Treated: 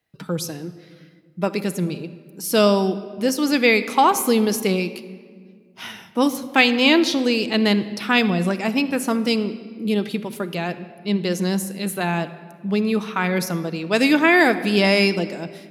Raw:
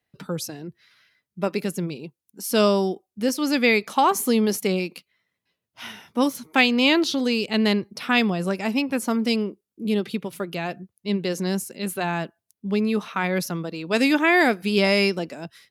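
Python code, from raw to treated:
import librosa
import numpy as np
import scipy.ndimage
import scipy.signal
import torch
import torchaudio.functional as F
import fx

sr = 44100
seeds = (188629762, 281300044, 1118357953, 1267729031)

y = fx.room_shoebox(x, sr, seeds[0], volume_m3=2900.0, walls='mixed', distance_m=0.62)
y = y * librosa.db_to_amplitude(2.5)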